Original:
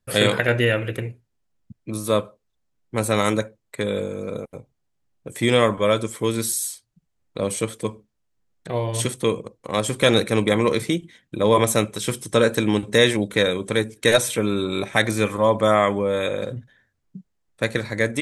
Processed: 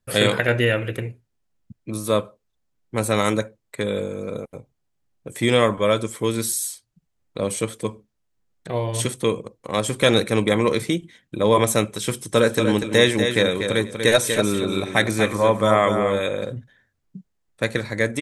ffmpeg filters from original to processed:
-filter_complex "[0:a]asplit=3[a][b][c];[a]afade=t=out:st=12.34:d=0.02[d];[b]aecho=1:1:241|482|723:0.447|0.0759|0.0129,afade=t=in:st=12.34:d=0.02,afade=t=out:st=16.19:d=0.02[e];[c]afade=t=in:st=16.19:d=0.02[f];[d][e][f]amix=inputs=3:normalize=0"

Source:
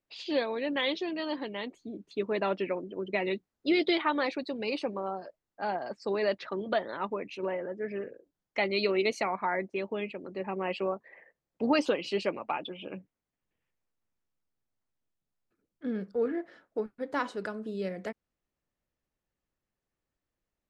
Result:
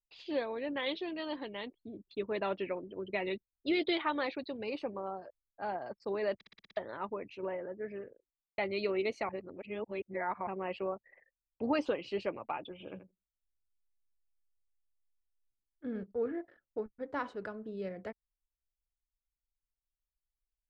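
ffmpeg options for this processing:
-filter_complex "[0:a]asettb=1/sr,asplit=3[a][b][c];[a]atrim=end=0.864[d];[b]atrim=start=0.86:end=4.57,asetpts=PTS-STARTPTS,afade=t=in:d=0.004:c=qsin,afade=t=out:st=3.706:d=0.004:c=qsin,lowpass=f=3.9k:t=q:w=2.1[e];[c]atrim=start=4.566[f];[d][e]acrossfade=d=0.004:c1=hsin:c2=qsin[g];[g][f]acrossfade=d=0.004:c1=qsin:c2=hsin,asettb=1/sr,asplit=3[h][i][j];[h]atrim=end=12.724[k];[i]atrim=start=12.72:end=16.03,asetpts=PTS-STARTPTS,afade=t=in:d=0.004:c=qsin,afade=t=out:st=3.306:d=0.004:c=qsin,aecho=1:1:82|164|246:0.282|0.0648|0.0149,atrim=end_sample=145971[l];[j]atrim=start=16.026[m];[k][l]acrossfade=d=0.004:c1=hsin:c2=qsin[n];[n][m]acrossfade=d=0.004:c1=qsin:c2=hsin,asplit=11[o][p][q][r][s][t][u][v][w][x][y];[o]atrim=end=6.412[z];[p]atrim=start=6.348:end=6.412[aa];[q]atrim=start=6.348:end=6.412[ab];[r]atrim=start=6.348:end=6.412[ac];[s]atrim=start=6.348:end=6.412[ad];[t]atrim=start=6.348:end=6.412[ae];[u]atrim=start=6.348:end=6.412[af];[v]atrim=start=6.768:end=8.58,asetpts=PTS-STARTPTS,afade=t=out:st=1.052:d=0.76[ag];[w]atrim=start=8.58:end=9.292,asetpts=PTS-STARTPTS,afade=t=in:d=0.004:c=hsin[ah];[x]atrim=start=9.288:end=10.472,asetpts=PTS-STARTPTS,areverse[ai];[y]atrim=start=10.468[aj];[z][aa]acrossfade=d=0.004:c1=hsin:c2=hsin[ak];[ak][ab]acrossfade=d=0.004:c1=hsin:c2=hsin[al];[al][ac]acrossfade=d=0.004:c1=hsin:c2=hsin[am];[am][ad]acrossfade=d=0.004:c1=hsin:c2=hsin[an];[an][ae]acrossfade=d=0.004:c1=hsin:c2=hsin[ao];[ao][af]acrossfade=d=0.004:c1=hsin:c2=hsin[ap];[ag][ah]concat=n=2:v=0:a=1[aq];[ap][aq]acrossfade=d=0.004:c1=hsin:c2=hsin[ar];[ar][ai]acrossfade=d=0.004:c1=hsin:c2=hsin[as];[as][aj]acrossfade=d=0.004:c1=hsin:c2=hsin,lowshelf=f=130:t=q:w=1.5:g=7.5,anlmdn=0.001,aemphasis=mode=reproduction:type=75fm,volume=-5dB"

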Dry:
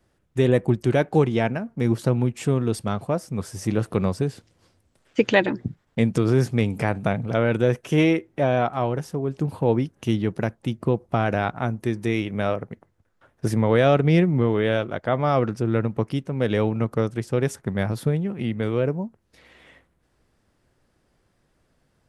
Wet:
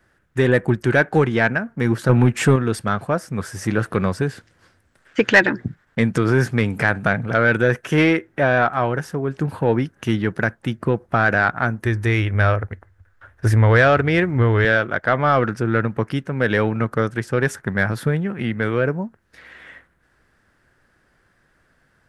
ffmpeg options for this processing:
-filter_complex "[0:a]asettb=1/sr,asplit=3[a][b][c];[a]atrim=end=2.094[d];[b]atrim=start=2.09:end=2.56,asetpts=PTS-STARTPTS,afade=t=in:d=0.004:c=qsin,afade=t=out:st=0.466:d=0.004:c=qsin,acontrast=71[e];[c]atrim=start=2.556[f];[d][e]acrossfade=d=0.004:c1=hsin:c2=qsin[g];[g][f]acrossfade=d=0.004:c1=qsin:c2=hsin,asettb=1/sr,asplit=3[h][i][j];[h]atrim=end=11.854[k];[i]atrim=start=11.85:end=14.65,asetpts=PTS-STARTPTS,afade=t=in:d=0.004:c=qsin,afade=t=out:st=2.796:d=0.004:c=qsin,lowshelf=f=120:t=q:w=3:g=9[l];[j]atrim=start=14.646[m];[k][l]acrossfade=d=0.004:c1=hsin:c2=qsin[n];[n][m]acrossfade=d=0.004:c1=qsin:c2=hsin,equalizer=f=1.6k:t=o:w=0.79:g=13.5,acontrast=35,volume=-3dB"

